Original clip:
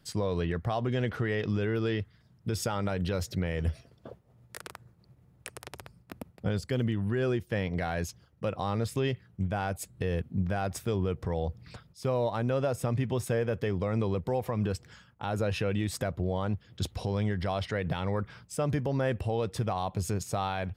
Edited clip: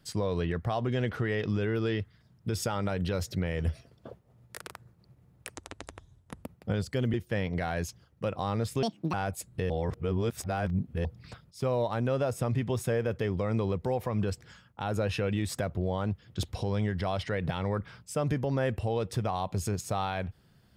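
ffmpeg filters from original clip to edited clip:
ffmpeg -i in.wav -filter_complex "[0:a]asplit=8[link_01][link_02][link_03][link_04][link_05][link_06][link_07][link_08];[link_01]atrim=end=5.554[link_09];[link_02]atrim=start=5.55:end=6.19,asetpts=PTS-STARTPTS,asetrate=32193,aresample=44100,atrim=end_sample=38663,asetpts=PTS-STARTPTS[link_10];[link_03]atrim=start=6.186:end=6.902[link_11];[link_04]atrim=start=7.338:end=9.034[link_12];[link_05]atrim=start=9.03:end=9.56,asetpts=PTS-STARTPTS,asetrate=75411,aresample=44100,atrim=end_sample=13668,asetpts=PTS-STARTPTS[link_13];[link_06]atrim=start=9.556:end=10.122[link_14];[link_07]atrim=start=10.118:end=11.472,asetpts=PTS-STARTPTS,areverse[link_15];[link_08]atrim=start=11.468[link_16];[link_09][link_10]acrossfade=duration=0.004:curve1=hsin:curve2=hsin[link_17];[link_17][link_11]acrossfade=duration=0.004:curve1=hsin:curve2=hsin[link_18];[link_18][link_12]acrossfade=duration=0.004:curve1=hsin:curve2=hsin[link_19];[link_19][link_13]acrossfade=duration=0.004:curve1=hsin:curve2=hsin[link_20];[link_20][link_14]acrossfade=duration=0.004:curve1=hsin:curve2=hsin[link_21];[link_21][link_15]acrossfade=duration=0.004:curve1=hsin:curve2=hsin[link_22];[link_22][link_16]acrossfade=duration=0.004:curve1=hsin:curve2=hsin" out.wav

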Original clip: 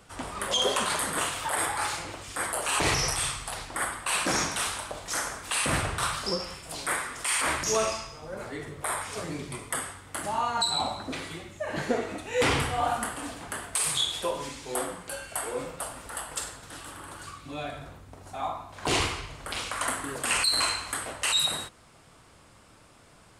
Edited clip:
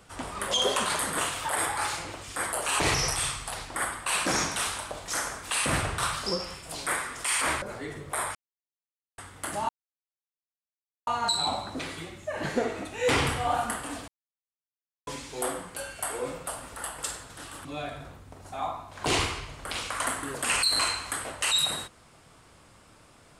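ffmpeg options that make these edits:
ffmpeg -i in.wav -filter_complex "[0:a]asplit=8[link_01][link_02][link_03][link_04][link_05][link_06][link_07][link_08];[link_01]atrim=end=7.622[link_09];[link_02]atrim=start=8.328:end=9.06,asetpts=PTS-STARTPTS,afade=type=out:start_time=0.728:duration=0.004:curve=hsin[link_10];[link_03]atrim=start=9.06:end=9.89,asetpts=PTS-STARTPTS,volume=0[link_11];[link_04]atrim=start=9.89:end=10.4,asetpts=PTS-STARTPTS,afade=type=in:duration=0.004:curve=hsin,afade=type=out:start_time=0.506:duration=0.004:curve=hsin,apad=pad_dur=1.38[link_12];[link_05]atrim=start=10.4:end=13.41,asetpts=PTS-STARTPTS,afade=type=in:duration=0.004:curve=hsin,afade=type=out:start_time=3.006:duration=0.004:curve=hsin[link_13];[link_06]atrim=start=13.41:end=14.4,asetpts=PTS-STARTPTS,volume=0[link_14];[link_07]atrim=start=14.4:end=16.982,asetpts=PTS-STARTPTS,afade=type=in:duration=0.004:curve=hsin[link_15];[link_08]atrim=start=17.458[link_16];[link_10][link_11][link_12][link_13][link_14][link_15]concat=n=6:v=0:a=1[link_17];[link_09][link_17]acrossfade=duration=0.004:curve1=hsin:curve2=hsin[link_18];[link_18][link_16]acrossfade=duration=0.004:curve1=hsin:curve2=hsin" out.wav

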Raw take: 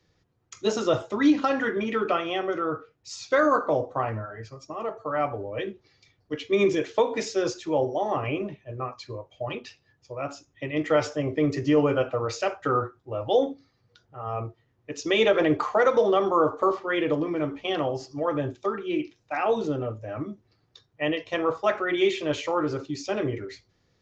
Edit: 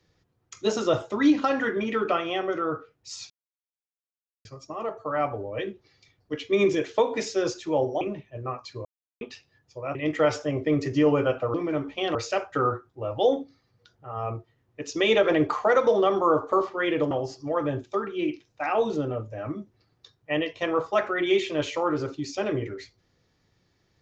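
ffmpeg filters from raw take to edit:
ffmpeg -i in.wav -filter_complex "[0:a]asplit=10[link_01][link_02][link_03][link_04][link_05][link_06][link_07][link_08][link_09][link_10];[link_01]atrim=end=3.3,asetpts=PTS-STARTPTS,afade=type=out:start_time=3.296:duration=0.004:curve=hsin[link_11];[link_02]atrim=start=3.3:end=4.45,asetpts=PTS-STARTPTS,volume=0[link_12];[link_03]atrim=start=4.45:end=8.012,asetpts=PTS-STARTPTS,afade=type=in:duration=0.004:curve=hsin[link_13];[link_04]atrim=start=8.348:end=9.19,asetpts=PTS-STARTPTS,afade=type=out:start_time=0.838:duration=0.004:curve=hsin[link_14];[link_05]atrim=start=9.19:end=9.55,asetpts=PTS-STARTPTS,volume=0[link_15];[link_06]atrim=start=9.55:end=10.292,asetpts=PTS-STARTPTS,afade=type=in:duration=0.004:curve=hsin[link_16];[link_07]atrim=start=10.658:end=12.252[link_17];[link_08]atrim=start=17.208:end=17.822[link_18];[link_09]atrim=start=12.248:end=17.212[link_19];[link_10]atrim=start=17.818[link_20];[link_11][link_12][link_13]concat=n=3:v=0:a=1[link_21];[link_14][link_15][link_16]concat=n=3:v=0:a=1[link_22];[link_21][link_22]acrossfade=duration=0.004:curve1=hsin:curve2=hsin[link_23];[link_23][link_17]acrossfade=duration=0.004:curve1=hsin:curve2=hsin[link_24];[link_24][link_18]acrossfade=duration=0.004:curve1=hsin:curve2=hsin[link_25];[link_25][link_19]acrossfade=duration=0.004:curve1=hsin:curve2=hsin[link_26];[link_26][link_20]acrossfade=duration=0.004:curve1=hsin:curve2=hsin" out.wav

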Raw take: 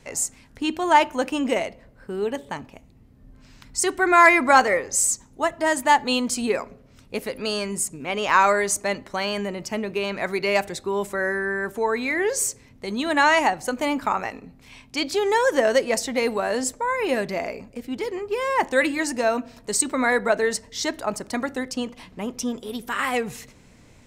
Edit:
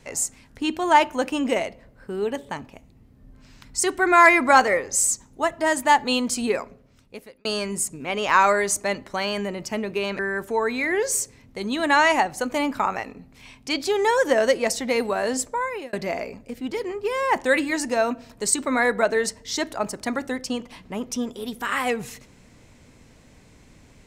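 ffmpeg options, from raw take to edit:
ffmpeg -i in.wav -filter_complex "[0:a]asplit=4[link_01][link_02][link_03][link_04];[link_01]atrim=end=7.45,asetpts=PTS-STARTPTS,afade=type=out:start_time=6.5:duration=0.95[link_05];[link_02]atrim=start=7.45:end=10.192,asetpts=PTS-STARTPTS,afade=type=in:duration=0.004:curve=hsin[link_06];[link_03]atrim=start=11.458:end=17.2,asetpts=PTS-STARTPTS,afade=type=out:start_time=5.362:duration=0.38[link_07];[link_04]atrim=start=17.2,asetpts=PTS-STARTPTS,afade=type=in:duration=0.004:curve=hsin[link_08];[link_05][link_06]concat=n=2:v=0:a=1[link_09];[link_07][link_08]concat=n=2:v=0:a=1[link_10];[link_09][link_10]acrossfade=duration=0.004:curve1=hsin:curve2=hsin" out.wav

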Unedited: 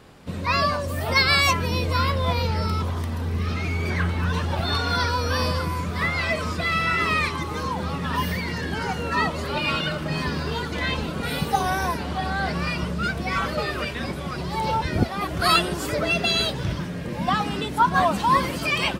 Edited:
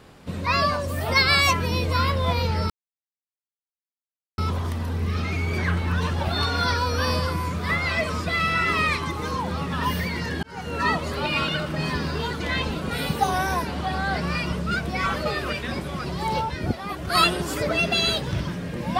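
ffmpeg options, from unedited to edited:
ffmpeg -i in.wav -filter_complex "[0:a]asplit=5[link_01][link_02][link_03][link_04][link_05];[link_01]atrim=end=2.7,asetpts=PTS-STARTPTS,afade=type=out:start_time=2.696:duration=0.004:curve=hsin,apad=pad_dur=1.68[link_06];[link_02]atrim=start=2.7:end=8.75,asetpts=PTS-STARTPTS,afade=type=in:duration=0.004:curve=hsin,afade=type=out:start_time=6.046:duration=0.004:curve=hsin[link_07];[link_03]atrim=start=8.75:end=14.732,asetpts=PTS-STARTPTS,afade=type=in:duration=0.36[link_08];[link_04]atrim=start=14.728:end=15.472,asetpts=PTS-STARTPTS,volume=-4dB[link_09];[link_05]atrim=start=15.468[link_10];[link_06][link_07][link_08]concat=n=3:v=0:a=1[link_11];[link_11][link_09]acrossfade=duration=0.004:curve1=hsin:curve2=hsin[link_12];[link_12][link_10]acrossfade=duration=0.004:curve1=hsin:curve2=hsin" out.wav

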